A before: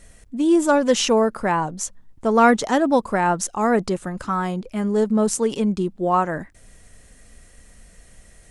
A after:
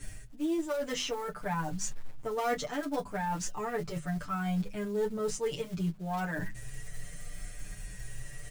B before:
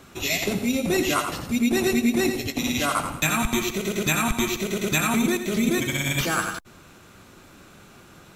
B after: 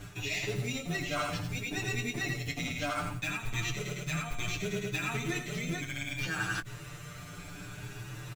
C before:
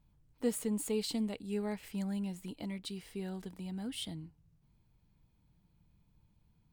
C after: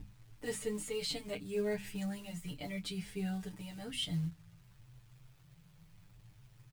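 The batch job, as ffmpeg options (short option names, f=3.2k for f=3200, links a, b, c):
-filter_complex "[0:a]equalizer=f=125:t=o:w=1:g=7,equalizer=f=250:t=o:w=1:g=-11,equalizer=f=500:t=o:w=1:g=-4,equalizer=f=1k:t=o:w=1:g=-8,equalizer=f=4k:t=o:w=1:g=-5,aeval=exprs='val(0)+0.00316*(sin(2*PI*50*n/s)+sin(2*PI*2*50*n/s)/2+sin(2*PI*3*50*n/s)/3+sin(2*PI*4*50*n/s)/4+sin(2*PI*5*50*n/s)/5)':c=same,highshelf=f=11k:g=-11.5,acrossover=split=6800[a][b];[b]acompressor=threshold=-54dB:ratio=4:attack=1:release=60[c];[a][c]amix=inputs=2:normalize=0,asplit=2[d][e];[e]aeval=exprs='(mod(6.31*val(0)+1,2)-1)/6.31':c=same,volume=-11dB[f];[d][f]amix=inputs=2:normalize=0,aecho=1:1:6.8:0.77,aecho=1:1:10|24:0.282|0.237,acrusher=bits=6:mode=log:mix=0:aa=0.000001,aeval=exprs='0.473*(cos(1*acos(clip(val(0)/0.473,-1,1)))-cos(1*PI/2))+0.0376*(cos(4*acos(clip(val(0)/0.473,-1,1)))-cos(4*PI/2))':c=same,areverse,acompressor=threshold=-35dB:ratio=6,areverse,bandreject=f=50:t=h:w=6,bandreject=f=100:t=h:w=6,bandreject=f=150:t=h:w=6,bandreject=f=200:t=h:w=6,bandreject=f=250:t=h:w=6,asplit=2[g][h];[h]adelay=7.6,afreqshift=0.65[i];[g][i]amix=inputs=2:normalize=1,volume=6.5dB"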